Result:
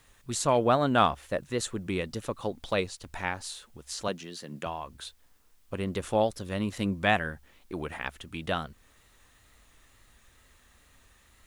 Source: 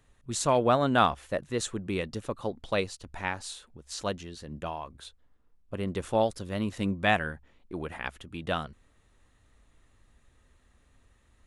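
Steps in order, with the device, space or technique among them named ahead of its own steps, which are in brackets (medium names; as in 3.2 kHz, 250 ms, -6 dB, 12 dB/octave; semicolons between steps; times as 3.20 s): 4.08–4.66 s: high-pass 140 Hz 24 dB/octave; noise-reduction cassette on a plain deck (tape noise reduction on one side only encoder only; wow and flutter; white noise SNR 39 dB)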